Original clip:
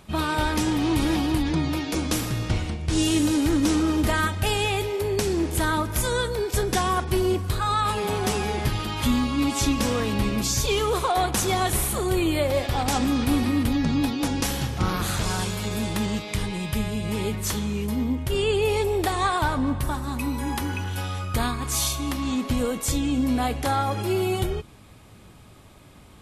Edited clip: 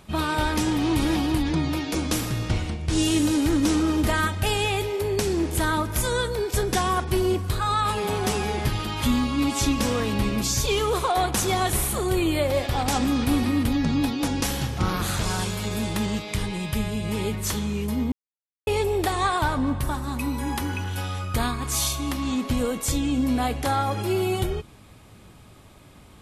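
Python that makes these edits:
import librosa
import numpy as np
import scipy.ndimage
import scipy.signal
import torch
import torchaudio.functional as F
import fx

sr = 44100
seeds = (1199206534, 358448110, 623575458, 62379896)

y = fx.edit(x, sr, fx.silence(start_s=18.12, length_s=0.55), tone=tone)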